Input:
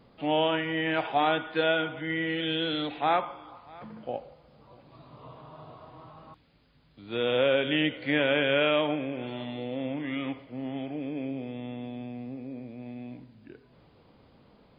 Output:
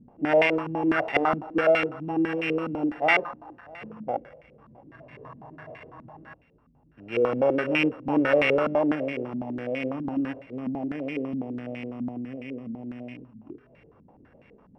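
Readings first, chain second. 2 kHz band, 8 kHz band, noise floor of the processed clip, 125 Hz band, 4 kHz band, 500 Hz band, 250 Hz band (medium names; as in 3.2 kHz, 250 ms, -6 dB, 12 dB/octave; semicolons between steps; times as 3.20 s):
+2.5 dB, no reading, -59 dBFS, +1.0 dB, -7.0 dB, +3.5 dB, +4.0 dB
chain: sorted samples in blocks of 16 samples; step-sequenced low-pass 12 Hz 230–2200 Hz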